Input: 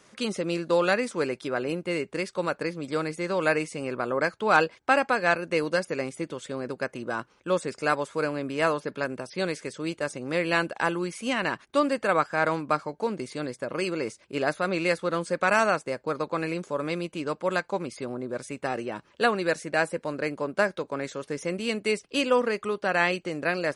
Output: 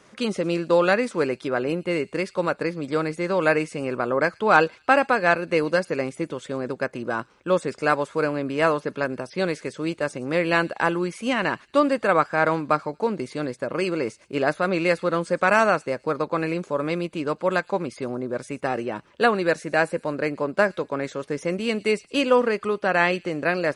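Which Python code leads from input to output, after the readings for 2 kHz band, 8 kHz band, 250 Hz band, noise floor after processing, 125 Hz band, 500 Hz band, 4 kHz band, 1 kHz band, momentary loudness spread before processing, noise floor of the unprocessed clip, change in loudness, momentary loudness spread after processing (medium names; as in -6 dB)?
+3.0 dB, -1.0 dB, +4.5 dB, -57 dBFS, +4.5 dB, +4.5 dB, +1.0 dB, +4.0 dB, 9 LU, -62 dBFS, +4.0 dB, 9 LU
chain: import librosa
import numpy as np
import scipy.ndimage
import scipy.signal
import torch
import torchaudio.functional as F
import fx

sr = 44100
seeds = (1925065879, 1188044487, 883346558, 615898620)

y = fx.high_shelf(x, sr, hz=3600.0, db=-7.0)
y = fx.echo_wet_highpass(y, sr, ms=114, feedback_pct=39, hz=4200.0, wet_db=-17.0)
y = y * 10.0 ** (4.5 / 20.0)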